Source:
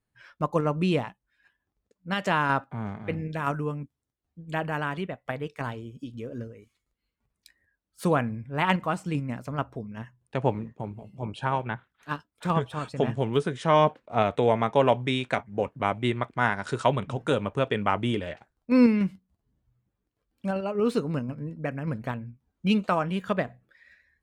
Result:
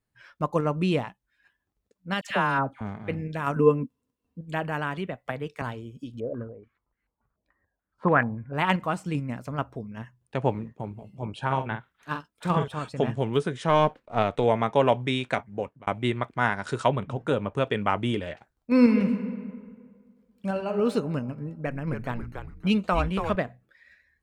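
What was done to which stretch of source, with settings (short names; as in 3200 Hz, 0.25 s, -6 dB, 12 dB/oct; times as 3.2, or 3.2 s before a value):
2.21–2.81 dispersion lows, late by 94 ms, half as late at 1400 Hz
3.56–4.41 small resonant body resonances 250/460/1000/2700 Hz, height 16 dB
5.07–5.62 three-band squash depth 40%
6.2–8.53 stepped low-pass 6.9 Hz 640–1800 Hz
11.46–12.68 doubler 45 ms -7 dB
13.69–14.44 half-wave gain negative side -3 dB
15.3–15.87 fade out equal-power
16.88–17.55 high shelf 2900 Hz -8.5 dB
18.71–20.74 reverb throw, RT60 1.9 s, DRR 5.5 dB
21.38–23.36 frequency-shifting echo 0.281 s, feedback 31%, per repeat -150 Hz, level -6 dB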